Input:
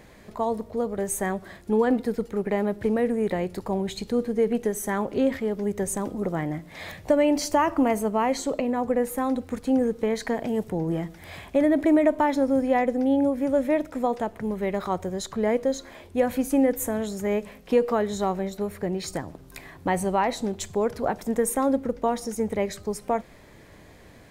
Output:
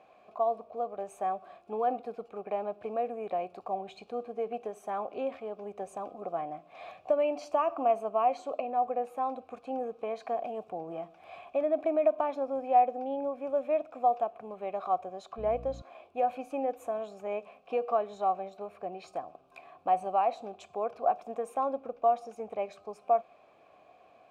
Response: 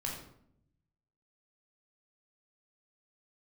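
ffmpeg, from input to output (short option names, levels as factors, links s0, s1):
-filter_complex "[0:a]asplit=3[s0][s1][s2];[s0]bandpass=f=730:t=q:w=8,volume=1[s3];[s1]bandpass=f=1090:t=q:w=8,volume=0.501[s4];[s2]bandpass=f=2440:t=q:w=8,volume=0.355[s5];[s3][s4][s5]amix=inputs=3:normalize=0,asettb=1/sr,asplit=3[s6][s7][s8];[s6]atrim=end=15.384[s9];[s7]atrim=start=15.38:end=15.82,asetpts=PTS-STARTPTS,afade=t=in:d=0.004:c=qsin,afade=t=out:st=0.436:d=0.004:c=qsin,aeval=exprs='val(0)+0.00398*(sin(2*PI*60*n/s)+sin(2*PI*2*60*n/s)/2+sin(2*PI*3*60*n/s)/3+sin(2*PI*4*60*n/s)/4+sin(2*PI*5*60*n/s)/5)':c=same[s10];[s8]atrim=start=15.816[s11];[s9][s10]acrossfade=d=0.004:c1=hsin:c2=qsin[s12];[s12][s11]acrossfade=d=0.004:c1=qsin:c2=hsin,volume=1.68"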